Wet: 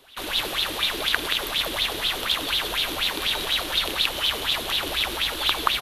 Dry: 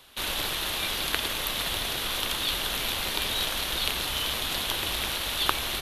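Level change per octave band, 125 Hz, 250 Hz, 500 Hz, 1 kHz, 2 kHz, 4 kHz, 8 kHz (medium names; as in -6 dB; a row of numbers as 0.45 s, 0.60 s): -1.5 dB, +3.5 dB, +4.0 dB, +4.0 dB, +4.5 dB, +5.0 dB, -1.5 dB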